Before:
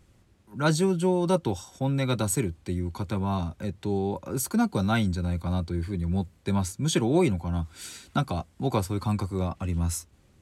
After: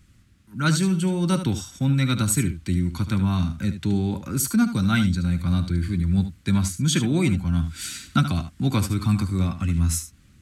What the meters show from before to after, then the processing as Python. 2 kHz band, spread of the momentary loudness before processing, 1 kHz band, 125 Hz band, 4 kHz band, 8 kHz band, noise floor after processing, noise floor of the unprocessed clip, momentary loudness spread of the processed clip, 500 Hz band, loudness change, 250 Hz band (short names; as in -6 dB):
+5.5 dB, 8 LU, -1.0 dB, +6.0 dB, +6.0 dB, +6.0 dB, -55 dBFS, -61 dBFS, 5 LU, -5.0 dB, +4.5 dB, +5.0 dB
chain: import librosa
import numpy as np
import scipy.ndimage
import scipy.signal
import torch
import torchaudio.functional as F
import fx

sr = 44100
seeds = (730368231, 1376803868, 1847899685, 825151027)

p1 = fx.band_shelf(x, sr, hz=600.0, db=-13.0, octaves=1.7)
p2 = p1 + 10.0 ** (-11.0 / 20.0) * np.pad(p1, (int(74 * sr / 1000.0), 0))[:len(p1)]
p3 = fx.rider(p2, sr, range_db=4, speed_s=0.5)
y = p2 + (p3 * librosa.db_to_amplitude(0.0))